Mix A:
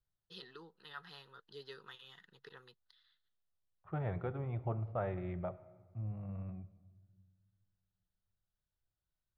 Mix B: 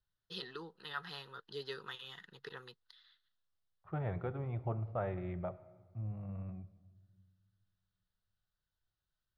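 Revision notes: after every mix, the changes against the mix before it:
first voice +7.0 dB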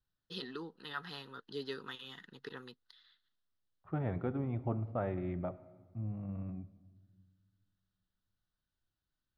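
master: add parametric band 260 Hz +14.5 dB 0.52 octaves

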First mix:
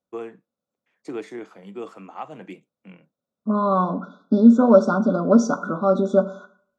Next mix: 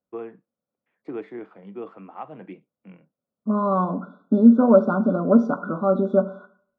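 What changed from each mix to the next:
master: add high-frequency loss of the air 480 metres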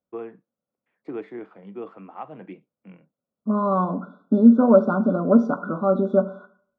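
nothing changed

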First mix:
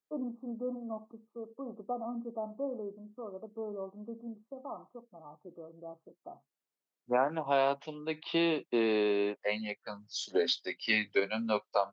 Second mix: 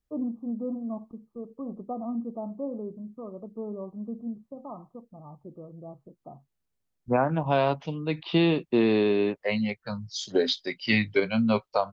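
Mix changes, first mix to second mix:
second voice +3.5 dB
master: remove high-pass filter 350 Hz 12 dB per octave

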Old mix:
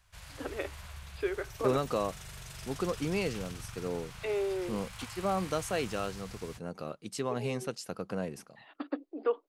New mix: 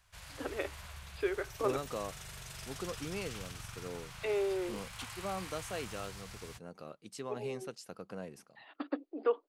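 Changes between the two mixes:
second voice −7.5 dB
master: add low-shelf EQ 180 Hz −4 dB

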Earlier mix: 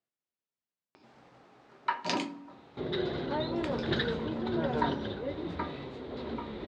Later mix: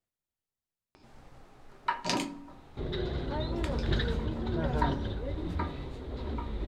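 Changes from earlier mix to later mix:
second sound −3.5 dB
master: remove band-pass filter 180–5,200 Hz

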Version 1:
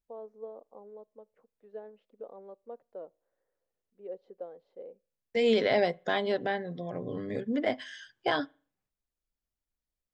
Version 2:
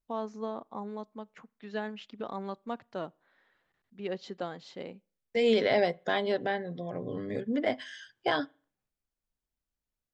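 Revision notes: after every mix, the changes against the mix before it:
first voice: remove resonant band-pass 500 Hz, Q 4.8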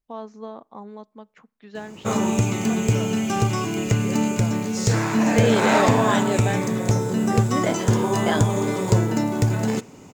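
second voice +3.5 dB
background: unmuted

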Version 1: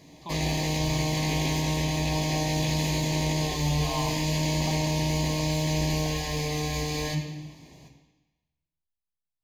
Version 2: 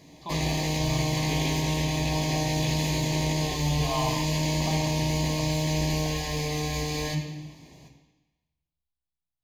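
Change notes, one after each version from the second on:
speech: send +9.0 dB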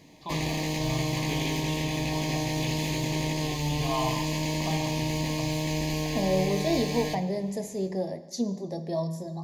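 second voice: unmuted
background: send −8.5 dB

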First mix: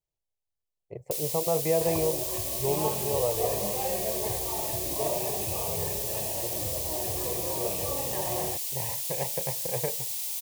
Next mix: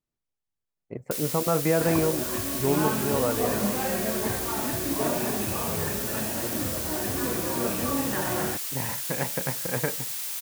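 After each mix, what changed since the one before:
master: remove phaser with its sweep stopped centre 600 Hz, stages 4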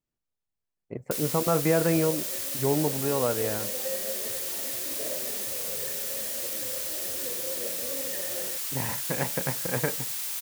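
second sound: add formant resonators in series e

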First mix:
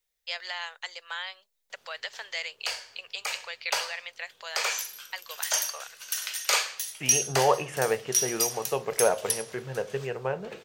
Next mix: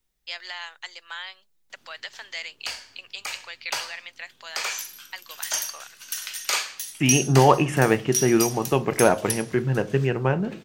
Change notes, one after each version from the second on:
second voice +8.0 dB
master: add low shelf with overshoot 380 Hz +6.5 dB, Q 3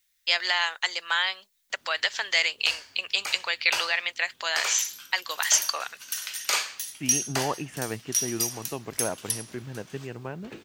first voice +11.0 dB
second voice −9.5 dB
reverb: off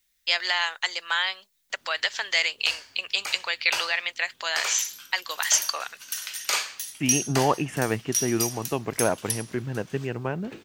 second voice +7.0 dB

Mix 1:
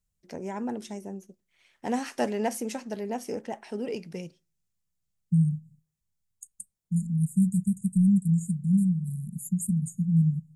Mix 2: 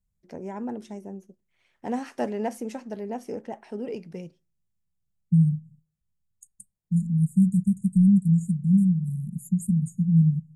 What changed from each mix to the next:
second voice +3.5 dB
master: add high-shelf EQ 2,100 Hz −9.5 dB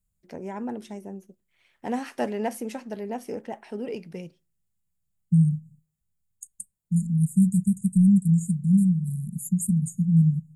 first voice: add parametric band 6,500 Hz −7.5 dB 1.2 octaves
master: add high-shelf EQ 2,100 Hz +9.5 dB

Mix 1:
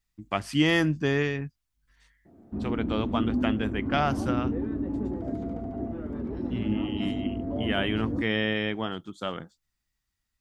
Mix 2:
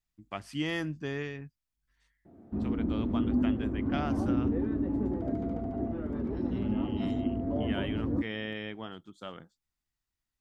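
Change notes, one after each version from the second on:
first voice −10.0 dB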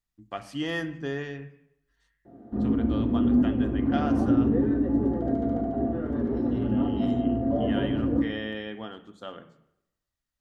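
reverb: on, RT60 0.85 s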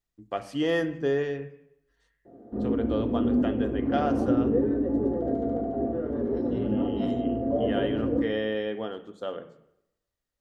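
background −5.0 dB
master: add parametric band 480 Hz +10.5 dB 0.9 octaves

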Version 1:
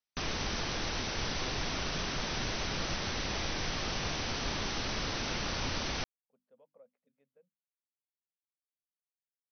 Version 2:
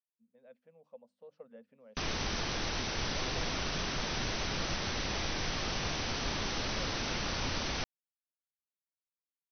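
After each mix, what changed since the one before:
speech +10.0 dB
background: entry +1.80 s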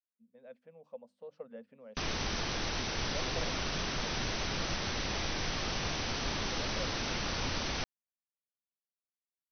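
speech +5.5 dB

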